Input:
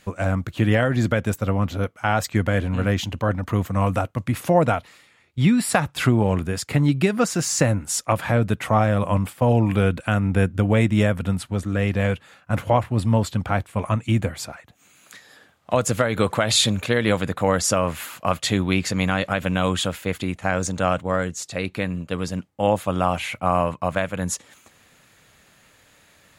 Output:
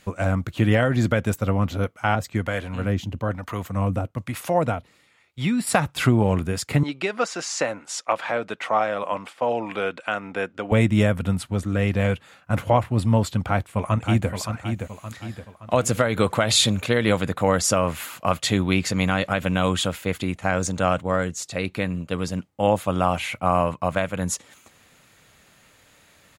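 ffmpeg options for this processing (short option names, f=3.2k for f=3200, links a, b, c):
-filter_complex "[0:a]asettb=1/sr,asplit=3[a][b][c];[a]atrim=end=2.154[d];[b]atrim=start=2.15:end=5.67,asetpts=PTS-STARTPTS,afade=t=in:d=0.004:c=qsin,afade=t=out:st=3.516:d=0.004:c=qsin,acrossover=split=520[e][f];[e]aeval=exprs='val(0)*(1-0.7/2+0.7/2*cos(2*PI*1.1*n/s))':c=same[g];[f]aeval=exprs='val(0)*(1-0.7/2-0.7/2*cos(2*PI*1.1*n/s))':c=same[h];[g][h]amix=inputs=2:normalize=0[i];[c]atrim=start=5.666[j];[d][i]acrossfade=d=0.004:c1=hsin:c2=qsin[k];[k][j]acrossfade=d=0.004:c1=qsin:c2=hsin,asettb=1/sr,asplit=3[l][m][n];[l]atrim=end=6.834[o];[m]atrim=start=6.83:end=10.72,asetpts=PTS-STARTPTS,afade=t=in:d=0.004:c=qsin,afade=t=out:st=3.886:d=0.004:c=qsin,highpass=470,lowpass=5.3k[p];[n]atrim=start=10.716[q];[o][p]acrossfade=d=0.004:c1=hsin:c2=qsin[r];[r][q]acrossfade=d=0.004:c1=qsin:c2=hsin,asplit=2[s][t];[t]afade=t=in:st=13.39:d=0.01,afade=t=out:st=14.3:d=0.01,aecho=0:1:570|1140|1710|2280|2850:0.446684|0.201008|0.0904534|0.040704|0.0183168[u];[s][u]amix=inputs=2:normalize=0,bandreject=f=1.7k:w=26"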